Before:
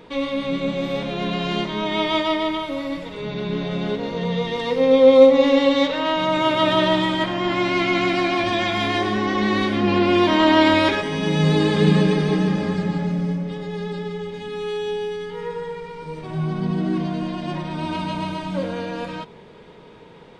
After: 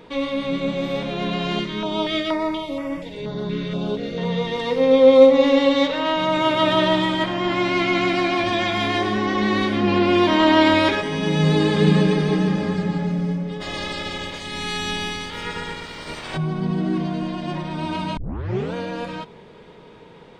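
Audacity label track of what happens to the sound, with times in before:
1.590000	4.180000	notch on a step sequencer 4.2 Hz 760–4,000 Hz
13.600000	16.360000	ceiling on every frequency bin ceiling under each frame's peak by 27 dB
18.170000	18.170000	tape start 0.57 s

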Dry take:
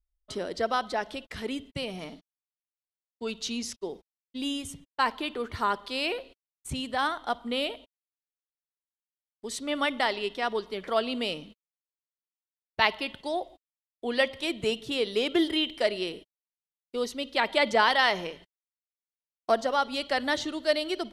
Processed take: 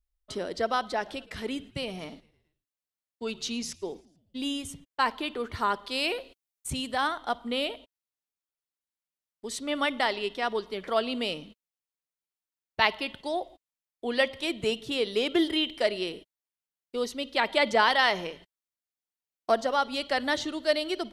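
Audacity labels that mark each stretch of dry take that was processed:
0.880000	4.480000	echo with shifted repeats 109 ms, feedback 57%, per repeat −74 Hz, level −24 dB
5.910000	6.980000	high-shelf EQ 5,300 Hz +6.5 dB

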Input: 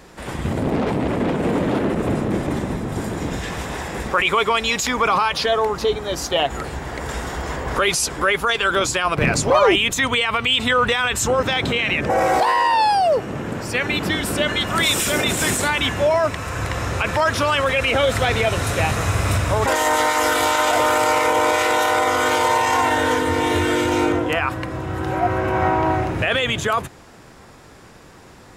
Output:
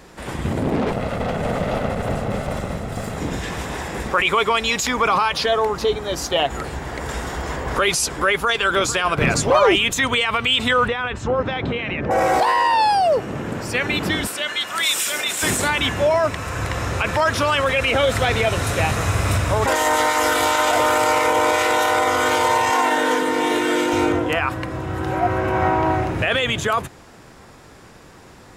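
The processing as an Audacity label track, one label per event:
0.910000	3.180000	lower of the sound and its delayed copy delay 1.5 ms
8.300000	8.880000	delay throw 450 ms, feedback 55%, level −13.5 dB
10.880000	12.110000	head-to-tape spacing loss at 10 kHz 29 dB
14.270000	15.430000	high-pass filter 1,500 Hz 6 dB per octave
22.700000	23.930000	high-pass filter 180 Hz 24 dB per octave

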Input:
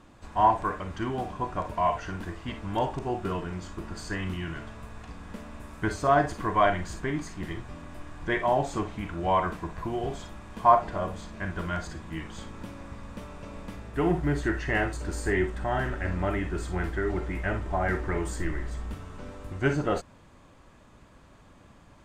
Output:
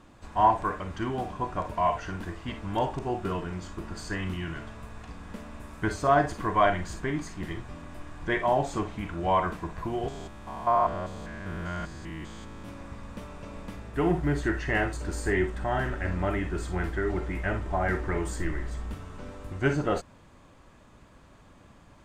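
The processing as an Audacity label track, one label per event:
10.080000	12.690000	spectrum averaged block by block every 200 ms

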